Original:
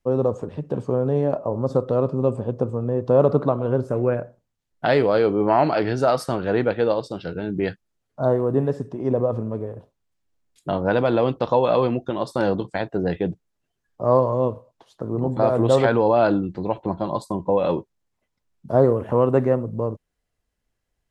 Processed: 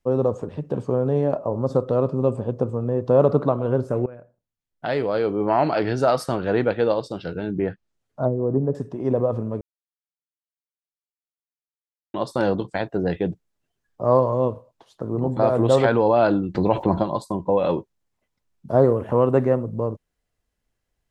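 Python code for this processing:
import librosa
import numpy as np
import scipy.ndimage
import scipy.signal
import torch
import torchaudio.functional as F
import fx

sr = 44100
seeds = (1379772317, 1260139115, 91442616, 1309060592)

y = fx.env_lowpass_down(x, sr, base_hz=300.0, full_db=-14.5, at=(7.49, 8.75))
y = fx.env_flatten(y, sr, amount_pct=50, at=(16.54, 17.02), fade=0.02)
y = fx.edit(y, sr, fx.fade_in_from(start_s=4.06, length_s=1.9, floor_db=-20.5),
    fx.silence(start_s=9.61, length_s=2.53), tone=tone)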